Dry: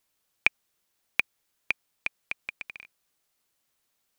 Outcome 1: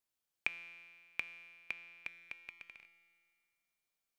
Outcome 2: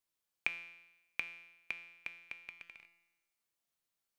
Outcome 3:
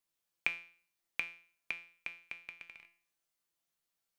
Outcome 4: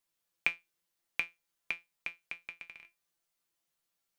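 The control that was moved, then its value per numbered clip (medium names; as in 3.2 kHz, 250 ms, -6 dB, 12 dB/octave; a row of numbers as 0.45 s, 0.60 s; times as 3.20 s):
feedback comb, decay: 2 s, 0.96 s, 0.46 s, 0.19 s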